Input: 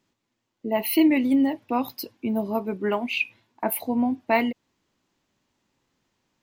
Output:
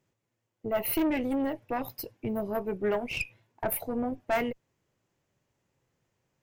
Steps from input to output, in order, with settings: valve stage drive 20 dB, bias 0.55; ten-band graphic EQ 125 Hz +8 dB, 250 Hz -8 dB, 500 Hz +5 dB, 1 kHz -4 dB, 4 kHz -8 dB

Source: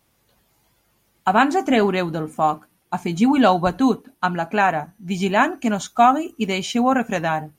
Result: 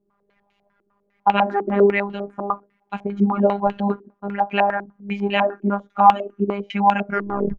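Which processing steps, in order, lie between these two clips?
tape stop on the ending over 0.54 s; robot voice 201 Hz; step-sequenced low-pass 10 Hz 360–2800 Hz; trim -2 dB

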